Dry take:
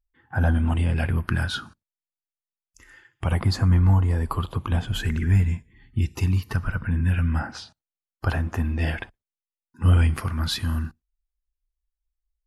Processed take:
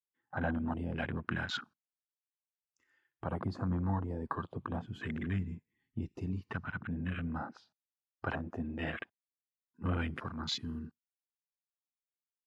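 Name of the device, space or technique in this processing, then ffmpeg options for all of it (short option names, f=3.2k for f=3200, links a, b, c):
over-cleaned archive recording: -af "highpass=180,lowpass=6.1k,afwtdn=0.0224,volume=-6.5dB"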